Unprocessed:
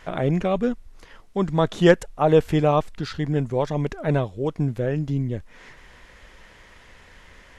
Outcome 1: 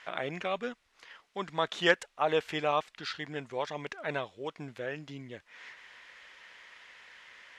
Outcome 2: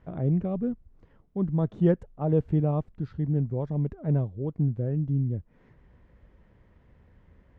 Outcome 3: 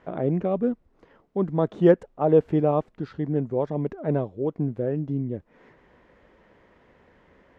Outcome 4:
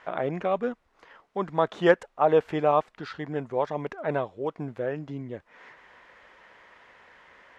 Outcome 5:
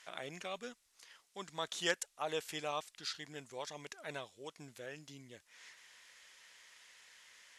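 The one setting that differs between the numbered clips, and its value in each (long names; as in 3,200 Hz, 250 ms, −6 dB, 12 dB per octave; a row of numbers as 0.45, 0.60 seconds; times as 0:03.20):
resonant band-pass, frequency: 2,600, 110, 330, 1,000, 8,000 Hertz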